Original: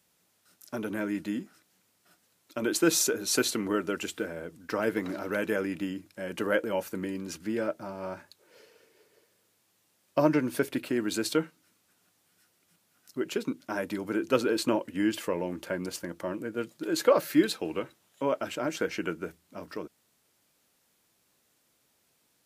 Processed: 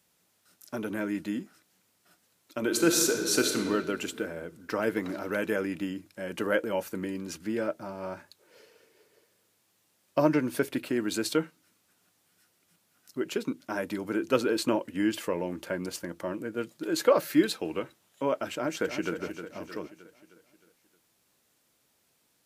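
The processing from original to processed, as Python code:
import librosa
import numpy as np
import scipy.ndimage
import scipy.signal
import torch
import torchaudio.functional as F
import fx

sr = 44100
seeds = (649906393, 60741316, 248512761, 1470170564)

y = fx.reverb_throw(x, sr, start_s=2.6, length_s=1.0, rt60_s=2.2, drr_db=4.0)
y = fx.echo_throw(y, sr, start_s=18.53, length_s=0.62, ms=310, feedback_pct=50, wet_db=-9.0)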